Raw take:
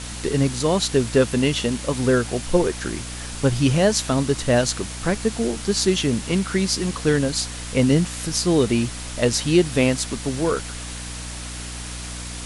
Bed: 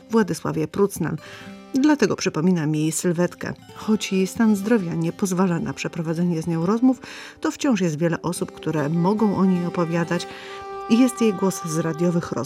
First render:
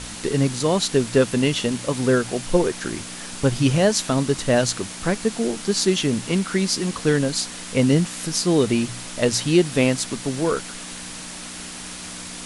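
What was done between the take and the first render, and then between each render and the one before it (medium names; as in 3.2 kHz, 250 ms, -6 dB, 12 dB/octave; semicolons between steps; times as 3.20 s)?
de-hum 60 Hz, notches 2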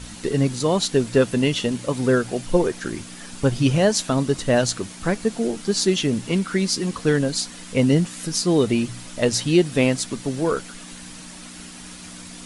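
noise reduction 7 dB, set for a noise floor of -35 dBFS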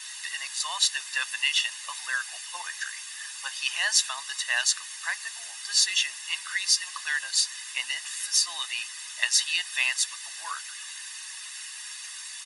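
high-pass 1.3 kHz 24 dB/octave; comb 1.1 ms, depth 78%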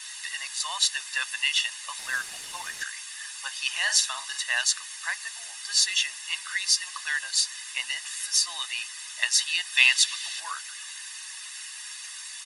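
1.99–2.83 s: CVSD coder 64 kbps; 3.71–4.43 s: doubling 48 ms -8.5 dB; 9.77–10.40 s: peaking EQ 3.4 kHz +9.5 dB 1.5 oct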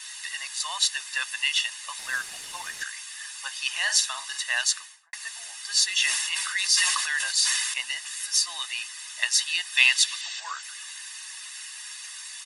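4.73–5.13 s: studio fade out; 5.94–7.74 s: decay stretcher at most 30 dB/s; 10.21–10.63 s: brick-wall FIR band-pass 330–8200 Hz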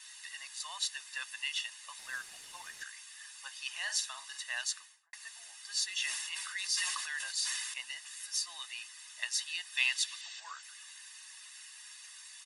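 trim -11.5 dB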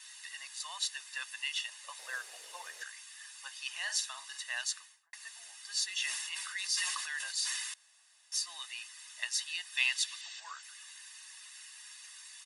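1.68–2.93 s: resonant high-pass 500 Hz, resonance Q 4; 7.74–8.32 s: room tone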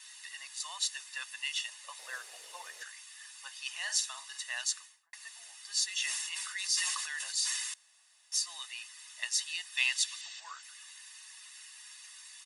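band-stop 1.6 kHz, Q 20; dynamic bell 7.2 kHz, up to +4 dB, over -47 dBFS, Q 1.2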